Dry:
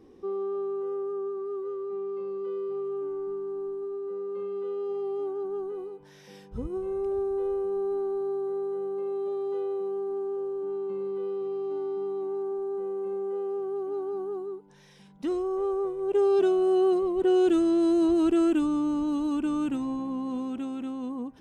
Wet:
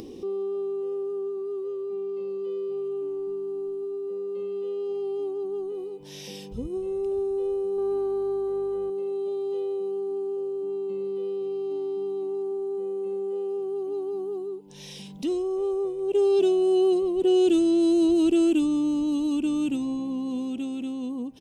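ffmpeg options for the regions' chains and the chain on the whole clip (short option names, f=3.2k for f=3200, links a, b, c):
-filter_complex "[0:a]asettb=1/sr,asplit=3[a][b][c];[a]atrim=end=7.784[d];[b]atrim=start=7.78:end=8.9,asetpts=PTS-STARTPTS,afade=t=in:d=0.004:c=qsin,afade=t=out:st=1.116:d=0.004:c=qsin,equalizer=f=1.4k:t=o:w=1.4:g=11,aeval=exprs='val(0)+0.00224*(sin(2*PI*50*n/s)+sin(2*PI*2*50*n/s)/2+sin(2*PI*3*50*n/s)/3+sin(2*PI*4*50*n/s)/4+sin(2*PI*5*50*n/s)/5)':c=same[e];[c]atrim=start=8.896[f];[d][e]acrossfade=d=0.004:c1=hsin:c2=qsin[g];[g][f]acrossfade=d=0.004:c1=qsin:c2=hsin,firequalizer=gain_entry='entry(290,0);entry(1500,-16);entry(2700,3)':delay=0.05:min_phase=1,acompressor=mode=upward:threshold=-33dB:ratio=2.5,lowshelf=f=120:g=-6.5,volume=3.5dB"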